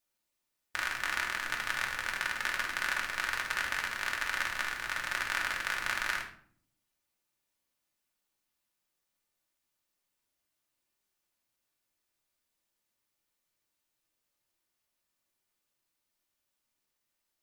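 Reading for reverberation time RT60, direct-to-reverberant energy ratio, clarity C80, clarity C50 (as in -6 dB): 0.55 s, -1.0 dB, 12.0 dB, 7.0 dB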